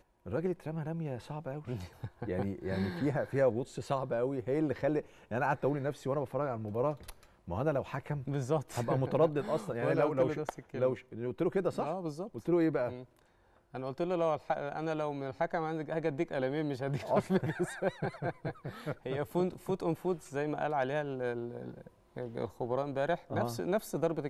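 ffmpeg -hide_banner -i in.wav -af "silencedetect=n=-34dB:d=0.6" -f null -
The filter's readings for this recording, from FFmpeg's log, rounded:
silence_start: 12.97
silence_end: 13.75 | silence_duration: 0.78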